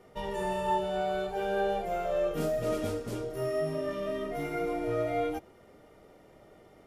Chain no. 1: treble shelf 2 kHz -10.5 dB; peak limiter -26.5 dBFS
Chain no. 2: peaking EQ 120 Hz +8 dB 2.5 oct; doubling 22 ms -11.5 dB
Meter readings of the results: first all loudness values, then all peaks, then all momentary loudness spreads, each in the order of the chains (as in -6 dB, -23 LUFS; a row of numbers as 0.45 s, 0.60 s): -35.0 LUFS, -29.5 LUFS; -26.5 dBFS, -15.0 dBFS; 2 LU, 4 LU